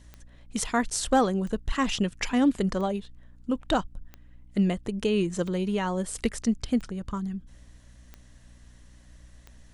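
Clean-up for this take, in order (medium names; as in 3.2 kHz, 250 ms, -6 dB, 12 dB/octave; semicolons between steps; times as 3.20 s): clip repair -13.5 dBFS; de-click; de-hum 60.3 Hz, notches 5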